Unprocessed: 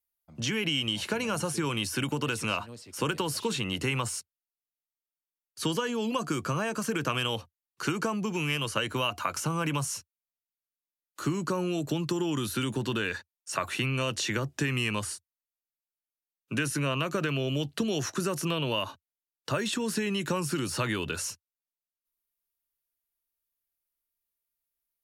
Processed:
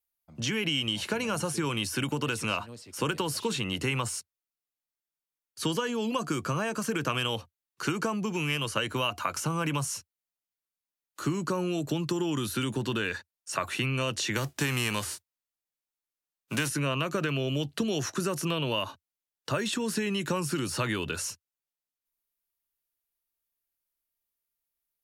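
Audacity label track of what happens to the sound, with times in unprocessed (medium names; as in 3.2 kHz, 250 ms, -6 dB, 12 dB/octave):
14.350000	16.680000	formants flattened exponent 0.6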